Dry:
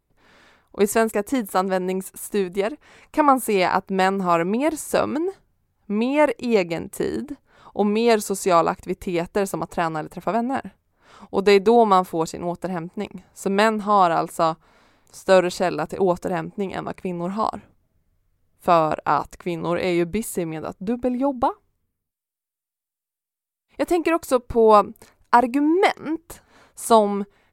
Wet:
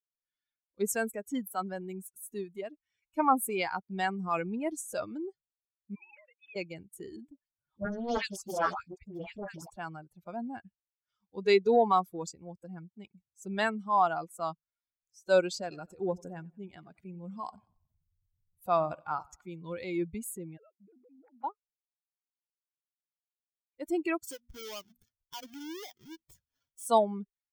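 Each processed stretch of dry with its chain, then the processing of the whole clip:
0:05.95–0:06.56: three sine waves on the formant tracks + high-pass filter 690 Hz 24 dB per octave + downward compressor 8 to 1, threshold −34 dBFS
0:07.30–0:09.70: high-shelf EQ 8,000 Hz −5 dB + all-pass dispersion highs, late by 140 ms, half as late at 940 Hz + highs frequency-modulated by the lows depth 0.92 ms
0:15.54–0:19.49: upward compression, threshold −29 dBFS + repeating echo 91 ms, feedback 58%, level −15 dB
0:20.57–0:21.44: three sine waves on the formant tracks + mains-hum notches 60/120/180/240/300/360 Hz + downward compressor 16 to 1, threshold −32 dBFS
0:24.27–0:26.87: each half-wave held at its own peak + mains-hum notches 60/120/180/240 Hz + downward compressor 3 to 1, threshold −29 dBFS
whole clip: spectral dynamics exaggerated over time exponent 2; low-shelf EQ 180 Hz −9 dB; transient designer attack −3 dB, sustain +3 dB; level −4 dB

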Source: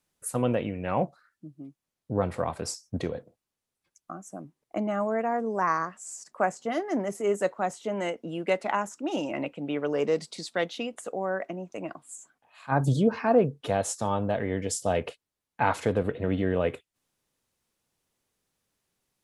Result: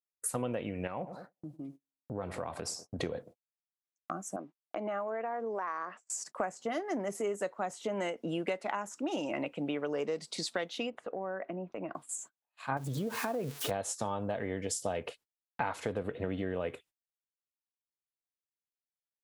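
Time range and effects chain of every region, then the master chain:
0:00.87–0:02.99: tape delay 97 ms, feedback 53%, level −17 dB, low-pass 1,100 Hz + downward compressor 2.5 to 1, threshold −41 dBFS
0:04.36–0:06.10: band-pass filter 330–3,500 Hz + downward compressor 3 to 1, threshold −36 dBFS
0:10.90–0:11.95: downward compressor 2 to 1, threshold −41 dBFS + high-frequency loss of the air 370 metres
0:12.77–0:13.71: spike at every zero crossing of −26 dBFS + high-shelf EQ 5,900 Hz −6 dB + downward compressor 4 to 1, threshold −26 dBFS
whole clip: noise gate −51 dBFS, range −35 dB; low-shelf EQ 260 Hz −4.5 dB; downward compressor 6 to 1, threshold −36 dBFS; level +4.5 dB

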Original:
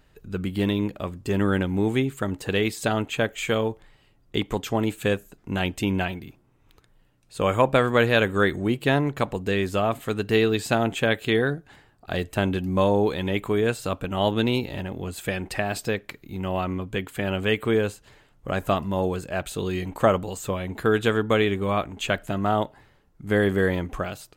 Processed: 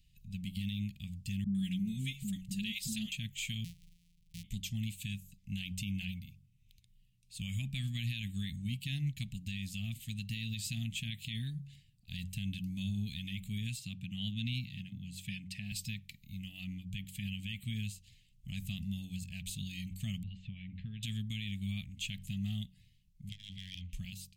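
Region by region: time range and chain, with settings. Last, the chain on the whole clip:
0:01.44–0:03.12: parametric band 1,100 Hz −4.5 dB 2.9 octaves + comb filter 4.8 ms, depth 85% + all-pass dispersion highs, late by 105 ms, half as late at 430 Hz
0:03.64–0:04.44: samples sorted by size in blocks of 256 samples + downward compressor 3 to 1, threshold −37 dBFS
0:13.79–0:15.72: high-pass filter 100 Hz 24 dB per octave + high-shelf EQ 6,300 Hz −10 dB
0:20.23–0:21.03: low-pass filter 2,800 Hz 24 dB per octave + downward compressor 2 to 1, threshold −29 dBFS
0:23.29–0:23.93: drawn EQ curve 100 Hz 0 dB, 480 Hz −11 dB, 700 Hz −27 dB, 3,000 Hz +9 dB, 13,000 Hz −19 dB + hard clipping −23.5 dBFS + saturating transformer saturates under 360 Hz
whole clip: inverse Chebyshev band-stop filter 330–1,500 Hz, stop band 40 dB; hum removal 46.57 Hz, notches 4; brickwall limiter −22.5 dBFS; level −5.5 dB

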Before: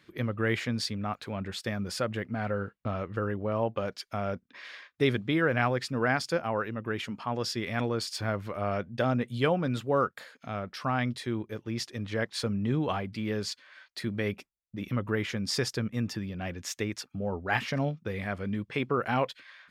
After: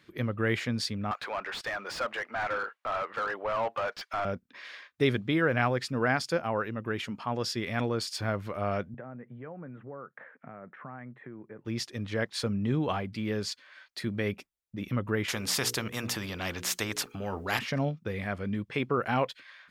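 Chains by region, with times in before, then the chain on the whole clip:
0:01.11–0:04.25: high-pass filter 840 Hz + mid-hump overdrive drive 24 dB, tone 1,100 Hz, clips at −19.5 dBFS
0:08.94–0:11.65: downward compressor 8 to 1, threshold −39 dBFS + elliptic band-pass filter 130–1,900 Hz
0:15.28–0:17.59: mains-hum notches 60/120/180/240/300/360/420/480 Hz + every bin compressed towards the loudest bin 2 to 1
whole clip: no processing

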